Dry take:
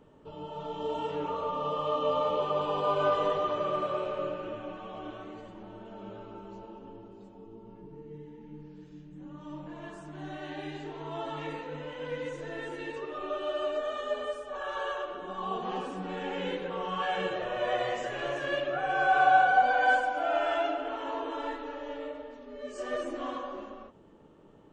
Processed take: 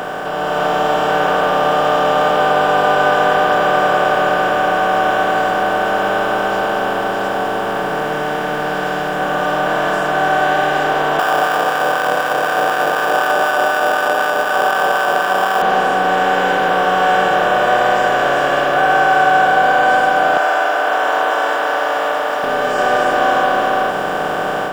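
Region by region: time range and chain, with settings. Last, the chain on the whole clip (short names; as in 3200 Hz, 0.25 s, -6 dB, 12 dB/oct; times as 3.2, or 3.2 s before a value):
11.19–15.62 sample-rate reducer 2100 Hz + compressor 4:1, threshold -34 dBFS + LFO high-pass sine 4 Hz 510–1500 Hz
20.37–22.44 HPF 760 Hz 24 dB/oct + band shelf 3200 Hz -8 dB 1.1 oct
whole clip: per-bin compression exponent 0.2; AGC gain up to 5.5 dB; gain +1.5 dB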